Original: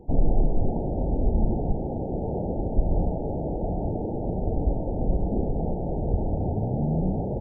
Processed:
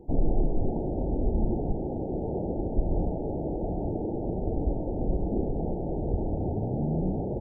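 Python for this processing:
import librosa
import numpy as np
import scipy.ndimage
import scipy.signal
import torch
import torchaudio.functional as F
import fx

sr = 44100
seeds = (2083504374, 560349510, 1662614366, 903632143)

y = fx.peak_eq(x, sr, hz=340.0, db=5.5, octaves=0.69)
y = F.gain(torch.from_numpy(y), -4.0).numpy()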